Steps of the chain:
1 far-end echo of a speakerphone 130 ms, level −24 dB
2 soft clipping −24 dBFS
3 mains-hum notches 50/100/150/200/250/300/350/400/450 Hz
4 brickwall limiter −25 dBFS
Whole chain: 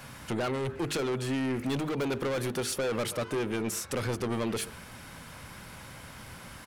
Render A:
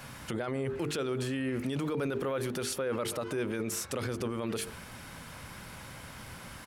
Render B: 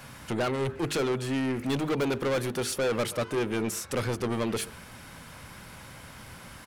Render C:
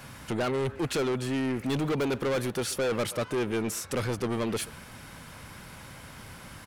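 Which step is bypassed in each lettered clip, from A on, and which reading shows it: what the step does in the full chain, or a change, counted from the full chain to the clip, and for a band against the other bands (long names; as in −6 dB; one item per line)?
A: 2, distortion level −5 dB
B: 4, change in crest factor +3.5 dB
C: 3, change in crest factor −2.0 dB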